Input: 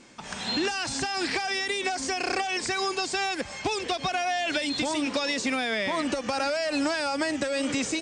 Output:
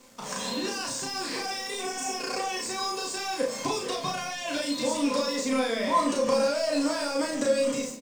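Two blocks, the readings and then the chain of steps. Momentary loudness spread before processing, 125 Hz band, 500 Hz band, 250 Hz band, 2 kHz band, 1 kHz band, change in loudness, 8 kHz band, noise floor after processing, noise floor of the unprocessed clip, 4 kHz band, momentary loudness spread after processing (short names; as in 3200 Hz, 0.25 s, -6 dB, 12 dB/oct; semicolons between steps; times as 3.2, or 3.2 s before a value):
2 LU, -2.0 dB, +2.5 dB, 0.0 dB, -6.0 dB, -1.0 dB, -1.0 dB, +1.5 dB, -37 dBFS, -40 dBFS, -2.5 dB, 6 LU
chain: ending faded out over 0.58 s; tone controls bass -8 dB, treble +13 dB; compressor 5:1, threshold -29 dBFS, peak gain reduction 9 dB; small resonant body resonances 220/500/1000 Hz, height 17 dB, ringing for 35 ms; crossover distortion -43.5 dBFS; spectral repair 1.82–2.1, 510–5100 Hz after; doubler 35 ms -2 dB; shoebox room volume 48 m³, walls mixed, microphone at 0.47 m; gain -5.5 dB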